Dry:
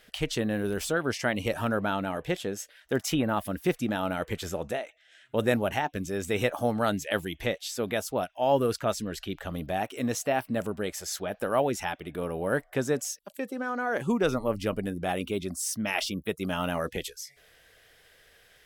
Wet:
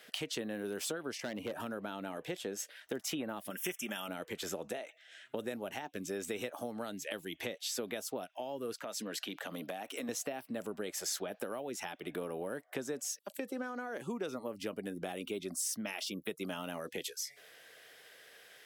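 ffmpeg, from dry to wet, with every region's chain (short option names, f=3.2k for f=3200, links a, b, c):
-filter_complex "[0:a]asettb=1/sr,asplit=3[a][b][c];[a]atrim=end=1.204[d];[b]atrim=start=1.2:end=1.6,asetpts=PTS-STARTPTS,afade=t=in:d=0.004:c=qsin,afade=t=out:st=0.396:d=0.004:c=qsin,equalizer=f=6.2k:t=o:w=2:g=-13.5,volume=25.5dB,asoftclip=hard,volume=-25.5dB[e];[c]atrim=start=1.596[f];[d][e]acrossfade=d=0.004:c1=hsin:c2=qsin[g];[g][f]acrossfade=d=0.004:c1=qsin:c2=hsin,asettb=1/sr,asplit=3[h][i][j];[h]atrim=end=3.504[k];[i]atrim=start=3.5:end=4.08,asetpts=PTS-STARTPTS,afade=t=in:d=0.004:c=qsin,afade=t=out:st=0.576:d=0.004:c=qsin,asuperstop=centerf=4300:order=12:qfactor=2.4,tiltshelf=f=1.2k:g=-8.5,aecho=1:1:5.1:0.57,atrim=end_sample=25578[l];[j]atrim=start=4.076[m];[k][l]acrossfade=d=0.004:c1=hsin:c2=qsin[n];[n][m]acrossfade=d=0.004:c1=qsin:c2=hsin,asettb=1/sr,asplit=3[o][p][q];[o]atrim=end=8.744[r];[p]atrim=start=8.74:end=10.09,asetpts=PTS-STARTPTS,afade=t=in:d=0.004:c=qsin,afade=t=out:st=1.346:d=0.004:c=qsin,highpass=210,equalizer=f=380:w=7.4:g=-11.5,acompressor=threshold=-34dB:ratio=4:attack=3.2:release=140:knee=1:detection=peak[s];[q]atrim=start=10.086[t];[r][s]acrossfade=d=0.004:c1=hsin:c2=qsin[u];[u][t]acrossfade=d=0.004:c1=qsin:c2=hsin,acompressor=threshold=-35dB:ratio=6,highpass=250,acrossover=split=420|3000[v][w][x];[w]acompressor=threshold=-43dB:ratio=6[y];[v][y][x]amix=inputs=3:normalize=0,volume=2dB"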